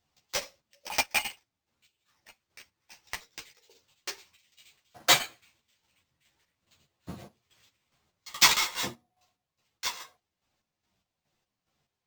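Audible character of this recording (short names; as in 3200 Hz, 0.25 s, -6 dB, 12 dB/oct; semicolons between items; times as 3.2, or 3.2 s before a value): chopped level 2.4 Hz, depth 60%, duty 45%; aliases and images of a low sample rate 11000 Hz, jitter 0%; a shimmering, thickened sound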